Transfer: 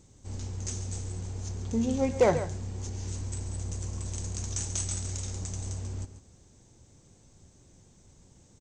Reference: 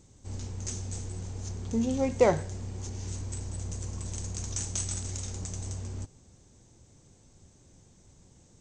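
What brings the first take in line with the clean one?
clipped peaks rebuilt −13.5 dBFS
echo removal 139 ms −12 dB

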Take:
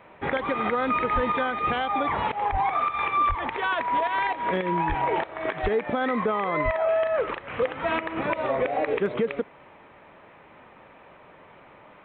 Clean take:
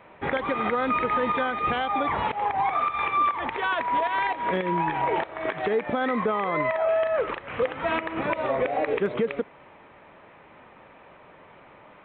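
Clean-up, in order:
high-pass at the plosives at 0:01.14/0:02.51/0:03.28/0:04.88/0:05.62/0:06.64

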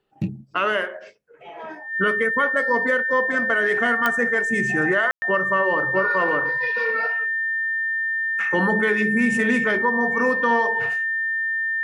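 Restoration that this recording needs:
click removal
notch filter 1,800 Hz, Q 30
ambience match 0:05.11–0:05.22

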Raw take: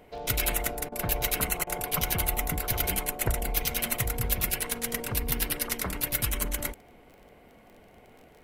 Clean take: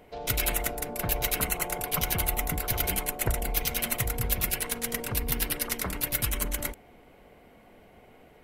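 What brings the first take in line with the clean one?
click removal
repair the gap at 0:00.89/0:01.64, 28 ms

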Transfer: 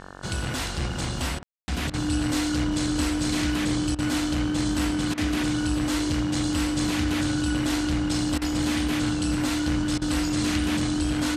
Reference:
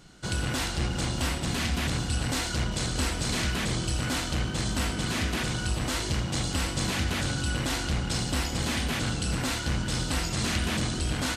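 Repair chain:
hum removal 46.9 Hz, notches 38
notch filter 300 Hz, Q 30
ambience match 0:01.43–0:01.68
repair the gap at 0:01.39/0:01.90/0:03.95/0:05.14/0:08.38/0:09.98, 35 ms

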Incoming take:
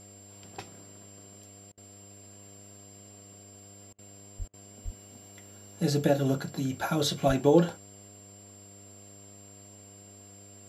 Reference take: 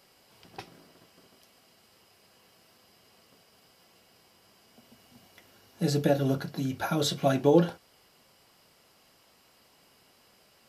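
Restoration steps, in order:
hum removal 100.6 Hz, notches 7
notch filter 7,400 Hz, Q 30
0:04.38–0:04.50: high-pass filter 140 Hz 24 dB per octave
0:04.84–0:04.96: high-pass filter 140 Hz 24 dB per octave
0:07.27–0:07.39: high-pass filter 140 Hz 24 dB per octave
repair the gap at 0:01.72/0:03.93/0:04.48, 54 ms

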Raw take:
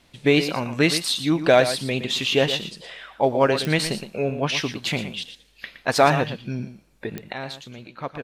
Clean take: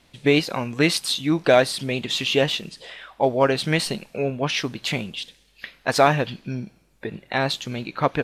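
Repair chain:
click removal
echo removal 117 ms −11 dB
level 0 dB, from 0:07.33 +10.5 dB

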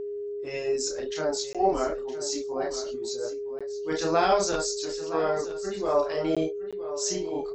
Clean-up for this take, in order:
notch filter 410 Hz, Q 30
repair the gap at 0:01.53/0:03.59/0:06.35/0:06.71, 16 ms
echo removal 966 ms −13.5 dB

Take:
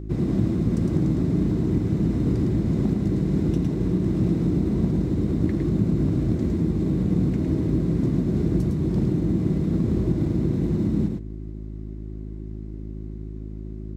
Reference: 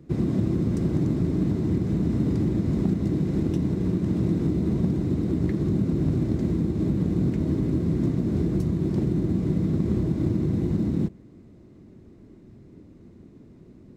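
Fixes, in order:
hum removal 52.9 Hz, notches 7
echo removal 108 ms −4.5 dB

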